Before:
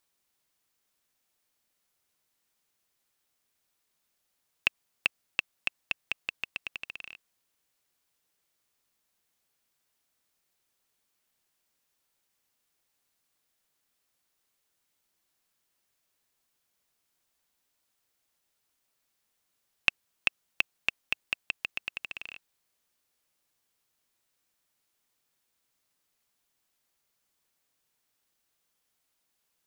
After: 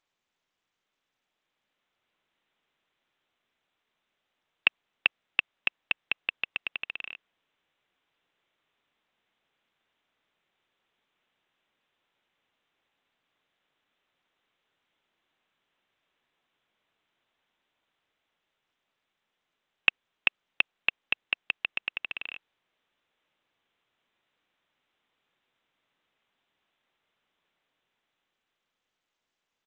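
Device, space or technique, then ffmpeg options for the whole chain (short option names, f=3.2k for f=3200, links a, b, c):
Bluetooth headset: -af "highpass=f=170:p=1,dynaudnorm=f=170:g=21:m=6dB,aresample=8000,aresample=44100" -ar 16000 -c:a sbc -b:a 64k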